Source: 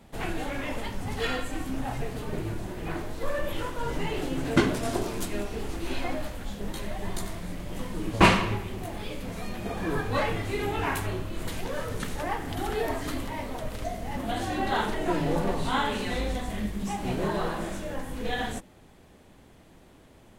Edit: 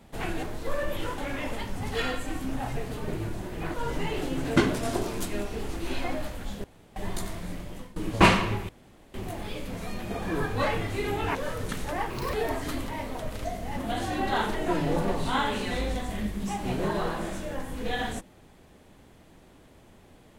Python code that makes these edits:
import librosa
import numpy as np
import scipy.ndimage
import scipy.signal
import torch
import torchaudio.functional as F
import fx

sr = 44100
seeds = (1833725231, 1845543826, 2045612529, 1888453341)

y = fx.edit(x, sr, fx.move(start_s=2.99, length_s=0.75, to_s=0.43),
    fx.room_tone_fill(start_s=6.64, length_s=0.32),
    fx.fade_out_to(start_s=7.55, length_s=0.41, floor_db=-19.5),
    fx.insert_room_tone(at_s=8.69, length_s=0.45),
    fx.cut(start_s=10.9, length_s=0.76),
    fx.speed_span(start_s=12.41, length_s=0.32, speed=1.36), tone=tone)